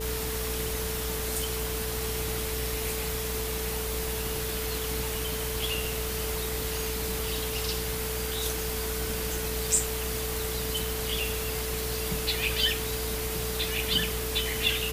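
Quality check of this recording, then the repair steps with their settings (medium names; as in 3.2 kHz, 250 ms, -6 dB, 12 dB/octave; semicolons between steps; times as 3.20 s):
buzz 60 Hz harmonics 28 -36 dBFS
whine 440 Hz -35 dBFS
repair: de-hum 60 Hz, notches 28; band-stop 440 Hz, Q 30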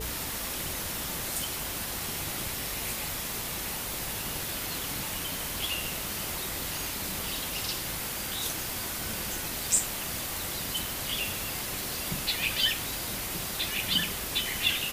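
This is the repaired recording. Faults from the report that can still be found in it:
nothing left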